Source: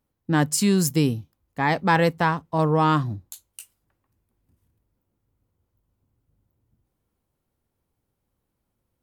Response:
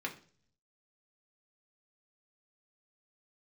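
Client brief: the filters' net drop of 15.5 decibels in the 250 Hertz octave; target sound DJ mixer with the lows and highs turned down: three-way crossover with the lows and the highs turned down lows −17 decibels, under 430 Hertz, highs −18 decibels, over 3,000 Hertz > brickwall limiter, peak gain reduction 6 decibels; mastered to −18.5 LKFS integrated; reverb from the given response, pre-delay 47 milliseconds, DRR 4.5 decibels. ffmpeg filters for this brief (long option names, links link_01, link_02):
-filter_complex "[0:a]equalizer=frequency=250:width_type=o:gain=-5,asplit=2[link_01][link_02];[1:a]atrim=start_sample=2205,adelay=47[link_03];[link_02][link_03]afir=irnorm=-1:irlink=0,volume=-7.5dB[link_04];[link_01][link_04]amix=inputs=2:normalize=0,acrossover=split=430 3000:gain=0.141 1 0.126[link_05][link_06][link_07];[link_05][link_06][link_07]amix=inputs=3:normalize=0,volume=9.5dB,alimiter=limit=-5dB:level=0:latency=1"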